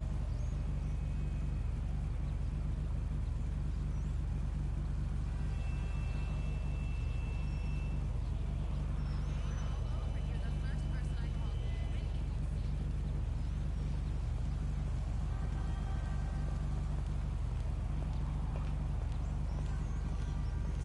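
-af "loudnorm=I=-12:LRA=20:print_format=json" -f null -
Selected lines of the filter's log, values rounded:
"input_i" : "-38.6",
"input_tp" : "-26.0",
"input_lra" : "0.2",
"input_thresh" : "-48.6",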